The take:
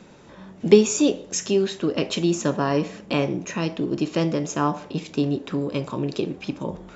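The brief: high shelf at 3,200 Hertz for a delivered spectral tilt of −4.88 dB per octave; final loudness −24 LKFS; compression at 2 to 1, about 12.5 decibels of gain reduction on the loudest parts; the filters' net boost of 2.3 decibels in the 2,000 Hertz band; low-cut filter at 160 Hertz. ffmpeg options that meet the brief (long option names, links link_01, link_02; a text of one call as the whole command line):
ffmpeg -i in.wav -af "highpass=160,equalizer=frequency=2000:width_type=o:gain=5.5,highshelf=frequency=3200:gain=-6,acompressor=threshold=-31dB:ratio=2,volume=7.5dB" out.wav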